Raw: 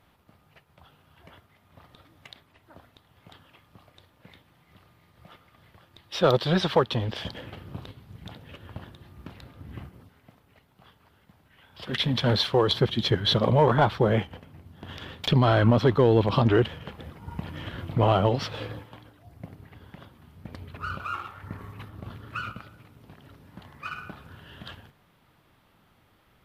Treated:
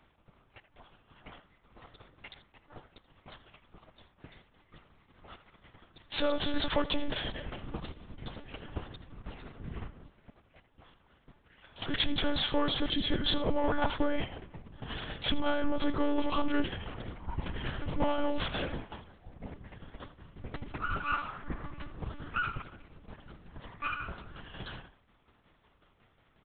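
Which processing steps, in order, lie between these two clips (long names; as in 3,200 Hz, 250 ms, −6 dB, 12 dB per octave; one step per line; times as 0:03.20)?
brickwall limiter −19 dBFS, peak gain reduction 9.5 dB
shaped tremolo saw down 5.5 Hz, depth 55%
leveller curve on the samples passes 1
far-end echo of a speakerphone 80 ms, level −12 dB
one-pitch LPC vocoder at 8 kHz 290 Hz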